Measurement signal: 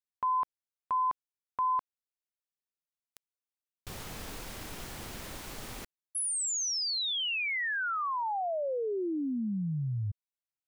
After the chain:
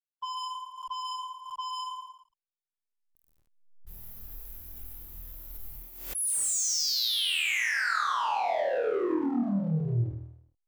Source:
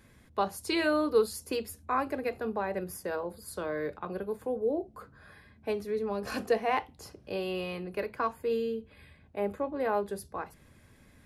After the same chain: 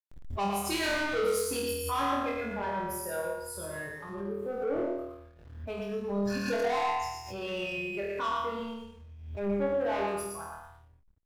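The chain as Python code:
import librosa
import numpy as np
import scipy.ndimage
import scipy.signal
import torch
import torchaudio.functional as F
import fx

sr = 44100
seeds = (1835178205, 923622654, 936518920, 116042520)

y = fx.bin_expand(x, sr, power=2.0)
y = fx.echo_thinned(y, sr, ms=115, feedback_pct=32, hz=320.0, wet_db=-3.5)
y = fx.transient(y, sr, attack_db=-2, sustain_db=3)
y = 10.0 ** (-35.5 / 20.0) * np.tanh(y / 10.0 ** (-35.5 / 20.0))
y = fx.room_flutter(y, sr, wall_m=4.3, rt60_s=0.77)
y = fx.backlash(y, sr, play_db=-59.5)
y = fx.pre_swell(y, sr, db_per_s=63.0)
y = y * 10.0 ** (5.0 / 20.0)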